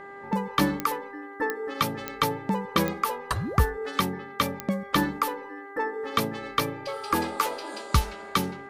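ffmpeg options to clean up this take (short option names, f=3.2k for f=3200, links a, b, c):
-af "adeclick=t=4,bandreject=f=398.6:t=h:w=4,bandreject=f=797.2:t=h:w=4,bandreject=f=1.1958k:t=h:w=4,bandreject=f=1.5944k:t=h:w=4,bandreject=f=1.993k:t=h:w=4"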